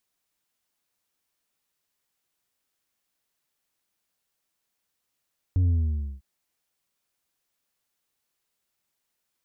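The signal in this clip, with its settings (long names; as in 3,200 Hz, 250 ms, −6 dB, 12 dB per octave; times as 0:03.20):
bass drop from 93 Hz, over 0.65 s, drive 4.5 dB, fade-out 0.54 s, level −19 dB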